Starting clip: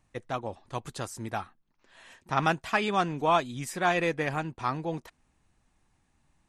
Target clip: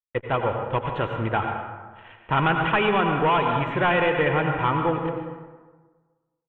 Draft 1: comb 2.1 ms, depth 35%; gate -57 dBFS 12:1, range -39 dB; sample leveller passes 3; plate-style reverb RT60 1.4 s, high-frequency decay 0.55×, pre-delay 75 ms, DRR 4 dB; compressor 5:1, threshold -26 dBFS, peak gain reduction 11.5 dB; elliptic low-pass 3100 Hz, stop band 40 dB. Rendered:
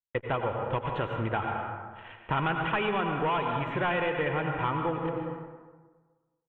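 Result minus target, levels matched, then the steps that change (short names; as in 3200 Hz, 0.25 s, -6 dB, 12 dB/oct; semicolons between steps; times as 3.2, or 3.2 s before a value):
compressor: peak gain reduction +7.5 dB
change: compressor 5:1, threshold -16.5 dBFS, peak gain reduction 4 dB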